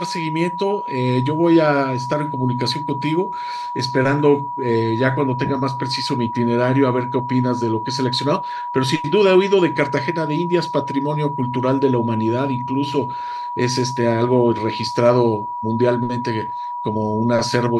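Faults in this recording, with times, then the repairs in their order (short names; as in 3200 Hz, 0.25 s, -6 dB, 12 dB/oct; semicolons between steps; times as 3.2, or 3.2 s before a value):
tone 970 Hz -24 dBFS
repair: notch 970 Hz, Q 30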